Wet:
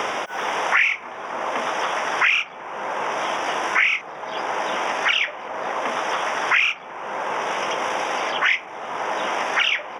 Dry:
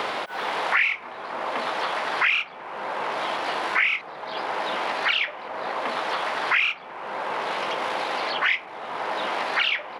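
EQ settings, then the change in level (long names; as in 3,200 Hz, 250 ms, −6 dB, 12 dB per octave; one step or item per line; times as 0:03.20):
Butterworth band-reject 4,200 Hz, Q 2.7
parametric band 5,900 Hz +12 dB 0.28 octaves
+3.0 dB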